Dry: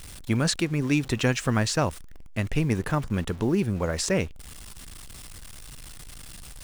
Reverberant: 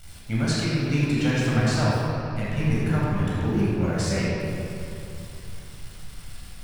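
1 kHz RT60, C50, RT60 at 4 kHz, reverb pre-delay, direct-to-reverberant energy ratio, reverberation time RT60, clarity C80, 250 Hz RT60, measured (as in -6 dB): 2.8 s, -3.5 dB, 1.9 s, 15 ms, -7.5 dB, 2.9 s, -1.5 dB, 3.2 s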